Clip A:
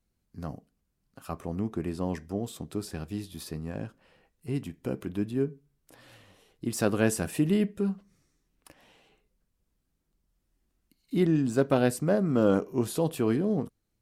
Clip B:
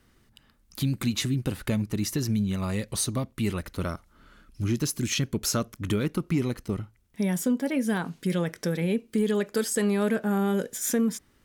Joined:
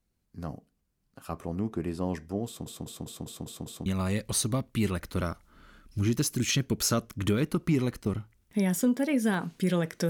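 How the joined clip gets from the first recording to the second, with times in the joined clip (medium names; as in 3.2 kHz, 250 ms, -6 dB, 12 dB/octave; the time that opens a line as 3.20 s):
clip A
2.46 s: stutter in place 0.20 s, 7 plays
3.86 s: go over to clip B from 2.49 s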